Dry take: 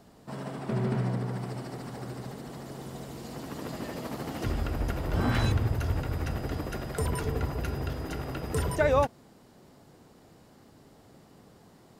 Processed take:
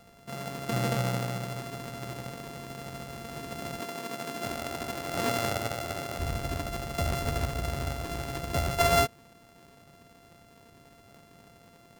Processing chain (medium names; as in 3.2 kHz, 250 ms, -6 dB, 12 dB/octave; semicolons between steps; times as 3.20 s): sorted samples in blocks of 64 samples; 3.80–6.18 s: high-pass 200 Hz 12 dB/octave